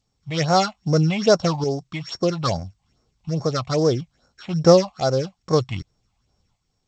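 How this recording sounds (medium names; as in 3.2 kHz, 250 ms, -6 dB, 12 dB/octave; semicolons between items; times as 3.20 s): a buzz of ramps at a fixed pitch in blocks of 8 samples; tremolo saw up 0.61 Hz, depth 55%; phasing stages 6, 2.4 Hz, lowest notch 380–3200 Hz; G.722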